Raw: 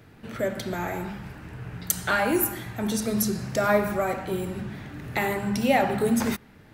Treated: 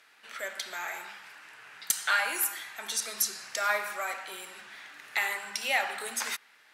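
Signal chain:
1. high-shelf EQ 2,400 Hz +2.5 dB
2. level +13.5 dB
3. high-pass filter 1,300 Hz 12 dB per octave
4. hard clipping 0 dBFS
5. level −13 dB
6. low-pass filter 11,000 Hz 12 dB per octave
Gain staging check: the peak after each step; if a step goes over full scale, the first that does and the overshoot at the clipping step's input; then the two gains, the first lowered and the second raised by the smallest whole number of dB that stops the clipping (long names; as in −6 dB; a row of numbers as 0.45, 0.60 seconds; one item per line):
−4.5, +9.0, +9.0, 0.0, −13.0, −11.5 dBFS
step 2, 9.0 dB
step 2 +4.5 dB, step 5 −4 dB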